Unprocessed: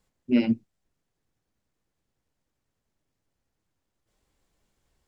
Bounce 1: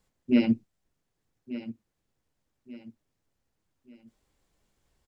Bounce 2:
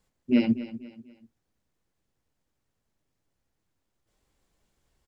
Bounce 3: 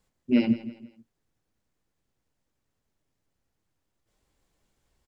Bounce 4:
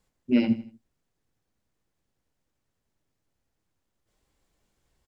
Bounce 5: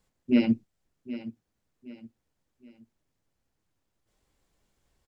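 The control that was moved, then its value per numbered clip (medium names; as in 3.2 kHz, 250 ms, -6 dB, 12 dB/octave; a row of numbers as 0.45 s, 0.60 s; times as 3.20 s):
feedback delay, time: 1186 ms, 244 ms, 164 ms, 80 ms, 770 ms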